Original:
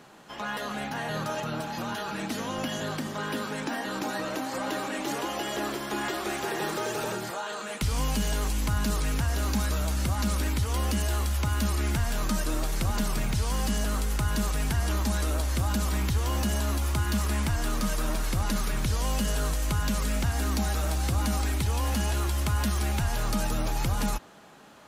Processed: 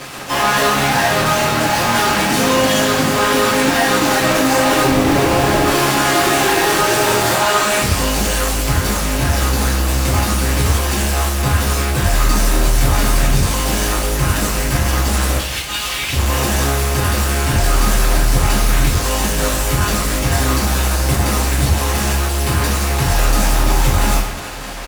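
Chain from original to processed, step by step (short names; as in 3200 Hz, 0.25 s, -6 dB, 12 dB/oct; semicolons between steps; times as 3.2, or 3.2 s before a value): limiter -22 dBFS, peak gain reduction 5 dB; 4.83–5.66 Schmitt trigger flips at -30.5 dBFS; 15.36–16.13 band-pass 3000 Hz, Q 2.6; fuzz box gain 51 dB, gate -48 dBFS; outdoor echo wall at 220 m, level -18 dB; reverb, pre-delay 3 ms, DRR -8.5 dB; gain -9 dB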